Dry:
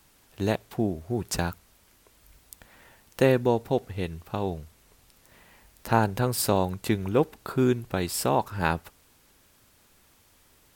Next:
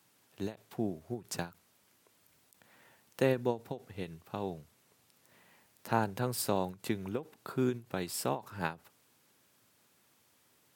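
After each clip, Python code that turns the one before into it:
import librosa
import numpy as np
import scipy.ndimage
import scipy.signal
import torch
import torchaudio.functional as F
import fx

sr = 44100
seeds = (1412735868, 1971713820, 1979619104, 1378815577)

y = scipy.signal.sosfilt(scipy.signal.butter(4, 110.0, 'highpass', fs=sr, output='sos'), x)
y = fx.end_taper(y, sr, db_per_s=230.0)
y = F.gain(torch.from_numpy(y), -7.5).numpy()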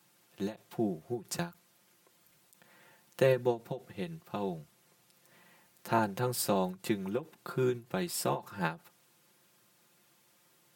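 y = x + 0.73 * np.pad(x, (int(5.7 * sr / 1000.0), 0))[:len(x)]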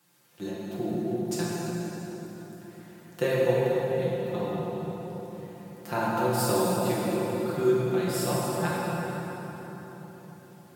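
y = fx.echo_filtered(x, sr, ms=278, feedback_pct=74, hz=810.0, wet_db=-9.0)
y = fx.rev_plate(y, sr, seeds[0], rt60_s=4.1, hf_ratio=0.7, predelay_ms=0, drr_db=-6.5)
y = F.gain(torch.from_numpy(y), -2.0).numpy()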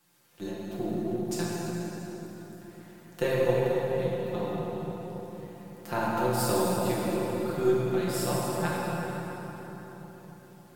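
y = np.where(x < 0.0, 10.0 ** (-3.0 / 20.0) * x, x)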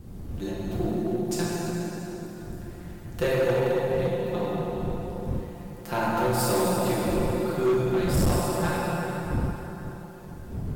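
y = fx.dmg_wind(x, sr, seeds[1], corner_hz=150.0, level_db=-36.0)
y = np.clip(y, -10.0 ** (-22.0 / 20.0), 10.0 ** (-22.0 / 20.0))
y = F.gain(torch.from_numpy(y), 3.5).numpy()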